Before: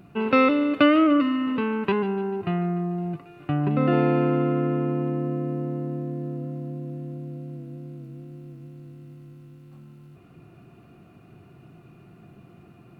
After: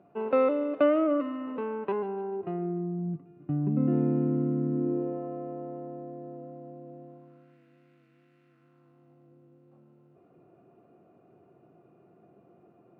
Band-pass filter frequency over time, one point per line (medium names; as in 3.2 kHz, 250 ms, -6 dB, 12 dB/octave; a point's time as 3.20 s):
band-pass filter, Q 1.8
2.27 s 600 Hz
3.08 s 210 Hz
4.71 s 210 Hz
5.22 s 660 Hz
7.02 s 660 Hz
7.58 s 1.9 kHz
8.42 s 1.9 kHz
9.37 s 530 Hz